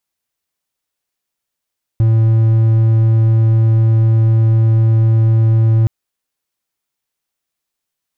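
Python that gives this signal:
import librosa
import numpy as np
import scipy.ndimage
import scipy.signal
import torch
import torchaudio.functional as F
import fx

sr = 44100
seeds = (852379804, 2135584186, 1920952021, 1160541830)

y = 10.0 ** (-6.0 / 20.0) * (1.0 - 4.0 * np.abs(np.mod(112.0 * (np.arange(round(3.87 * sr)) / sr) + 0.25, 1.0) - 0.5))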